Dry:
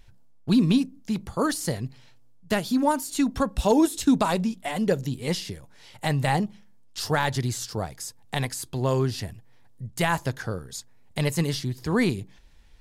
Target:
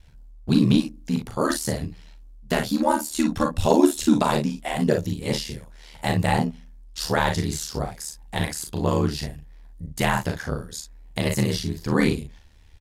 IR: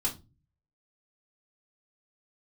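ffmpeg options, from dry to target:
-af "aecho=1:1:37|56:0.562|0.355,aeval=exprs='val(0)*sin(2*PI*38*n/s)':c=same,volume=3.5dB"

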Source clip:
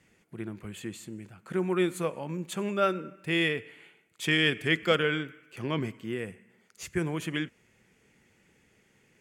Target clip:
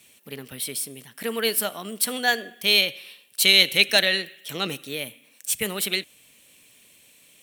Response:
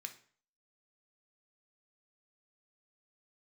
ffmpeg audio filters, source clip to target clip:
-af "asetrate=54684,aresample=44100,crystalizer=i=8.5:c=0,volume=-1.5dB"

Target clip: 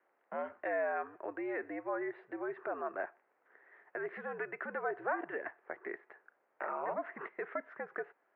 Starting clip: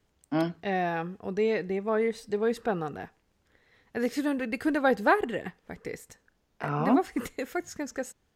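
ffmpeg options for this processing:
-af "alimiter=level_in=4dB:limit=-24dB:level=0:latency=1:release=138,volume=-4dB,highpass=f=540:t=q:w=0.5412,highpass=f=540:t=q:w=1.307,lowpass=f=2.1k:t=q:w=0.5176,lowpass=f=2.1k:t=q:w=0.7071,lowpass=f=2.1k:t=q:w=1.932,afreqshift=-80,volume=4.5dB"

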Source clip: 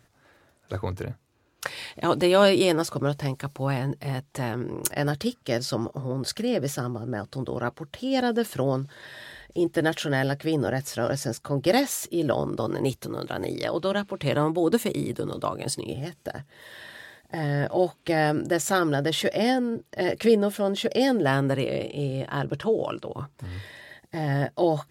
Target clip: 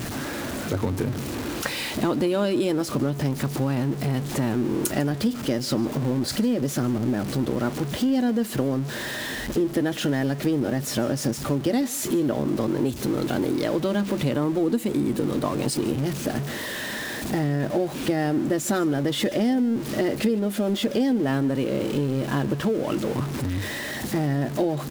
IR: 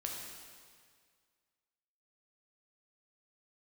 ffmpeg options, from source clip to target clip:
-filter_complex "[0:a]aeval=exprs='val(0)+0.5*0.0398*sgn(val(0))':c=same,equalizer=f=250:t=o:w=1.2:g=11,acompressor=threshold=-20dB:ratio=6,asplit=2[a][b];[b]aecho=0:1:149:0.0891[c];[a][c]amix=inputs=2:normalize=0"

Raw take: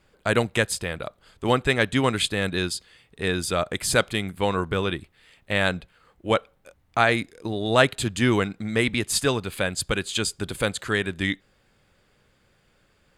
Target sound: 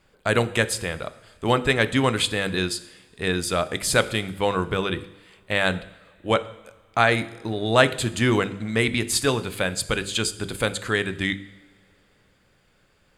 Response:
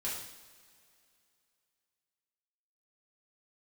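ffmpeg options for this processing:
-filter_complex "[0:a]bandreject=f=49.37:t=h:w=4,bandreject=f=98.74:t=h:w=4,bandreject=f=148.11:t=h:w=4,bandreject=f=197.48:t=h:w=4,bandreject=f=246.85:t=h:w=4,bandreject=f=296.22:t=h:w=4,bandreject=f=345.59:t=h:w=4,bandreject=f=394.96:t=h:w=4,bandreject=f=444.33:t=h:w=4,bandreject=f=493.7:t=h:w=4,asplit=2[a][b];[1:a]atrim=start_sample=2205[c];[b][c]afir=irnorm=-1:irlink=0,volume=-14dB[d];[a][d]amix=inputs=2:normalize=0"

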